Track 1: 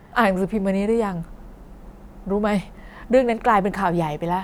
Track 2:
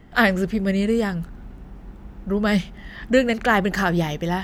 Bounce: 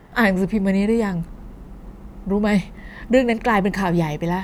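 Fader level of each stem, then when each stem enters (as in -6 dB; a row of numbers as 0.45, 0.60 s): -0.5, -4.5 dB; 0.00, 0.00 s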